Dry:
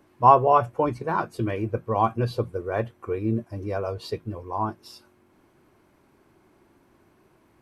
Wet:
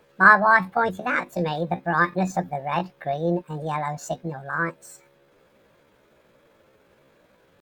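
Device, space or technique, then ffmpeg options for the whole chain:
chipmunk voice: -af "asetrate=68011,aresample=44100,atempo=0.64842,volume=1.5dB"

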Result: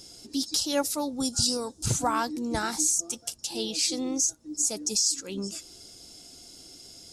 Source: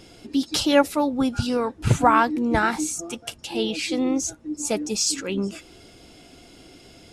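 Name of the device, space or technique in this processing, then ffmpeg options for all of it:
over-bright horn tweeter: -filter_complex "[0:a]highshelf=frequency=3700:width_type=q:width=1.5:gain=13.5,alimiter=limit=-6dB:level=0:latency=1:release=262,asettb=1/sr,asplit=3[link_01][link_02][link_03];[link_01]atrim=end=1.204[link_04];[link_02]atrim=start=1.2:end=1.86,asetpts=PTS-STARTPTS,afade=type=in:duration=0.004:curve=qsin,afade=type=out:start_time=0.656:duration=0.004:curve=qsin,equalizer=frequency=2000:width_type=o:width=1:gain=-11,equalizer=frequency=4000:width_type=o:width=1:gain=4,equalizer=frequency=8000:width_type=o:width=1:gain=9[link_05];[link_03]atrim=start=1.856[link_06];[link_04][link_05]acrossfade=duration=0.004:curve1=hsin:curve2=qsin[link_07];[link_07][link_06]acrossfade=duration=0.004:curve1=qsin:curve2=hsin,volume=-8dB"

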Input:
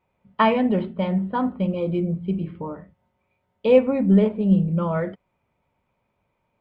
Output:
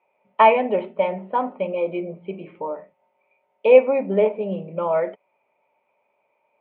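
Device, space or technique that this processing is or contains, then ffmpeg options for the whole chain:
phone earpiece: -af "highpass=370,equalizer=frequency=420:width_type=q:width=4:gain=5,equalizer=frequency=600:width_type=q:width=4:gain=10,equalizer=frequency=870:width_type=q:width=4:gain=8,equalizer=frequency=1600:width_type=q:width=4:gain=-4,equalizer=frequency=2400:width_type=q:width=4:gain=10,lowpass=frequency=3200:width=0.5412,lowpass=frequency=3200:width=1.3066,volume=-1dB"

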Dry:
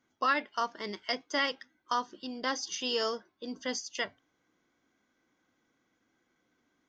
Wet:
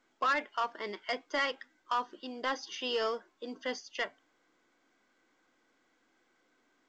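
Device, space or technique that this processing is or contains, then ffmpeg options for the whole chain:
telephone: -af "highpass=320,lowpass=3100,asoftclip=type=tanh:threshold=-25dB,volume=2dB" -ar 16000 -c:a pcm_mulaw

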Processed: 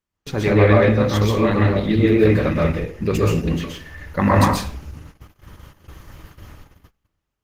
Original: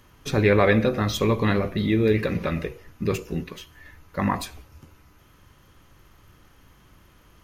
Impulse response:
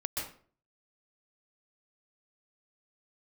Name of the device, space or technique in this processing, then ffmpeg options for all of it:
speakerphone in a meeting room: -filter_complex "[1:a]atrim=start_sample=2205[link_01];[0:a][link_01]afir=irnorm=-1:irlink=0,dynaudnorm=framelen=500:gausssize=5:maxgain=11dB,agate=range=-30dB:threshold=-39dB:ratio=16:detection=peak" -ar 48000 -c:a libopus -b:a 16k

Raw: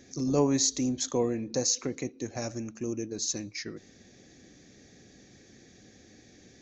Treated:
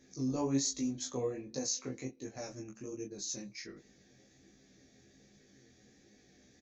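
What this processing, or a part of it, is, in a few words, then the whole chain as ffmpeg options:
double-tracked vocal: -filter_complex "[0:a]asplit=2[link_01][link_02];[link_02]adelay=15,volume=-2.5dB[link_03];[link_01][link_03]amix=inputs=2:normalize=0,flanger=delay=19.5:depth=4.8:speed=1.3,volume=-7dB"

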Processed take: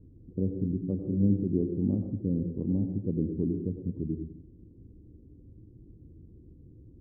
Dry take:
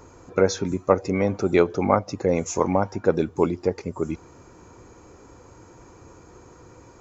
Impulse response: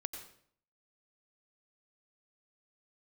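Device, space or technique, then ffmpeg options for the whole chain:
next room: -filter_complex "[0:a]lowpass=frequency=270:width=0.5412,lowpass=frequency=270:width=1.3066[link_01];[1:a]atrim=start_sample=2205[link_02];[link_01][link_02]afir=irnorm=-1:irlink=0,asettb=1/sr,asplit=3[link_03][link_04][link_05];[link_03]atrim=end=1.024[link_06];[link_04]atrim=start=1.02:end=1.44,asetpts=PTS-STARTPTS,afade=type=in:duration=0.004:curve=qsin,afade=type=out:start_time=0.416:duration=0.004:curve=qsin,asplit=2[link_07][link_08];[link_08]adelay=30,volume=-2.5dB[link_09];[link_07][link_09]amix=inputs=2:normalize=0,atrim=end_sample=18522[link_10];[link_05]atrim=start=1.436[link_11];[link_06][link_10]acrossfade=duration=0.004:curve1=hsin:curve2=qsin[link_12];[link_12][link_11]acrossfade=duration=0.004:curve1=qsin:curve2=hsin,volume=1dB"

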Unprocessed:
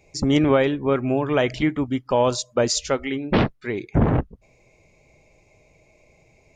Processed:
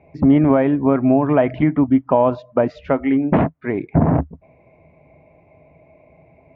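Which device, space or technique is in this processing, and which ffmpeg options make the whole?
bass amplifier: -af "acompressor=threshold=-20dB:ratio=3,highpass=64,equalizer=frequency=76:width_type=q:width=4:gain=8,equalizer=frequency=160:width_type=q:width=4:gain=9,equalizer=frequency=270:width_type=q:width=4:gain=9,equalizer=frequency=670:width_type=q:width=4:gain=10,equalizer=frequency=970:width_type=q:width=4:gain=6,lowpass=frequency=2200:width=0.5412,lowpass=frequency=2200:width=1.3066,volume=2.5dB"

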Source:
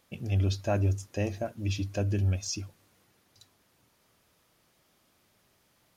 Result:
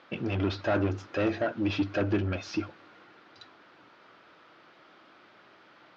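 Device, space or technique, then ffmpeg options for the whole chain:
overdrive pedal into a guitar cabinet: -filter_complex "[0:a]asplit=2[link_01][link_02];[link_02]highpass=frequency=720:poles=1,volume=25dB,asoftclip=type=tanh:threshold=-17dB[link_03];[link_01][link_03]amix=inputs=2:normalize=0,lowpass=frequency=1700:poles=1,volume=-6dB,highpass=75,equalizer=frequency=88:width_type=q:width=4:gain=-3,equalizer=frequency=320:width_type=q:width=4:gain=7,equalizer=frequency=1400:width_type=q:width=4:gain=7,lowpass=frequency=4500:width=0.5412,lowpass=frequency=4500:width=1.3066,volume=-2.5dB"

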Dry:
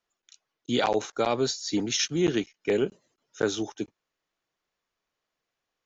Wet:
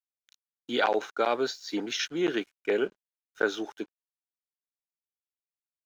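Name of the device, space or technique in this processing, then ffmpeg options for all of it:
pocket radio on a weak battery: -af "highpass=330,lowpass=3900,aeval=exprs='sgn(val(0))*max(abs(val(0))-0.0015,0)':channel_layout=same,equalizer=frequency=1500:width_type=o:width=0.29:gain=7"

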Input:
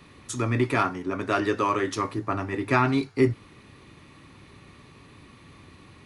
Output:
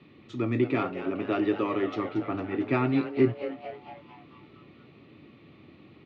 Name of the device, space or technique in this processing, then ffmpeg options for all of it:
frequency-shifting delay pedal into a guitar cabinet: -filter_complex "[0:a]asplit=8[link_01][link_02][link_03][link_04][link_05][link_06][link_07][link_08];[link_02]adelay=227,afreqshift=150,volume=-11dB[link_09];[link_03]adelay=454,afreqshift=300,volume=-15.6dB[link_10];[link_04]adelay=681,afreqshift=450,volume=-20.2dB[link_11];[link_05]adelay=908,afreqshift=600,volume=-24.7dB[link_12];[link_06]adelay=1135,afreqshift=750,volume=-29.3dB[link_13];[link_07]adelay=1362,afreqshift=900,volume=-33.9dB[link_14];[link_08]adelay=1589,afreqshift=1050,volume=-38.5dB[link_15];[link_01][link_09][link_10][link_11][link_12][link_13][link_14][link_15]amix=inputs=8:normalize=0,highpass=110,equalizer=frequency=140:width_type=q:width=4:gain=3,equalizer=frequency=220:width_type=q:width=4:gain=4,equalizer=frequency=330:width_type=q:width=4:gain=7,equalizer=frequency=1000:width_type=q:width=4:gain=-8,equalizer=frequency=1600:width_type=q:width=4:gain=-9,lowpass=frequency=3500:width=0.5412,lowpass=frequency=3500:width=1.3066,volume=-4dB"

